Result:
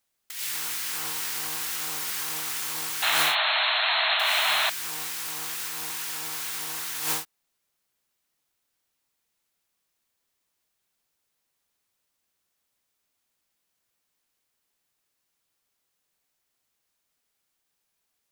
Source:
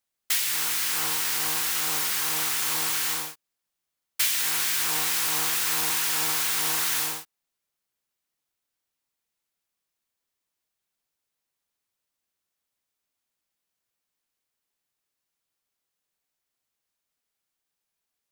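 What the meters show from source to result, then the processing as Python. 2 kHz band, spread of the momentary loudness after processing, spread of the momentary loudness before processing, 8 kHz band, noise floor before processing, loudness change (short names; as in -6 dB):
+3.0 dB, 9 LU, 4 LU, -5.5 dB, -84 dBFS, -2.5 dB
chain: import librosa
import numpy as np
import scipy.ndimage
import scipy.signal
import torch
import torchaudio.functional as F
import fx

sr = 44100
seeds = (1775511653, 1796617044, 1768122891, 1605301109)

y = fx.over_compress(x, sr, threshold_db=-30.0, ratio=-0.5)
y = fx.spec_paint(y, sr, seeds[0], shape='noise', start_s=3.02, length_s=1.68, low_hz=600.0, high_hz=4300.0, level_db=-24.0)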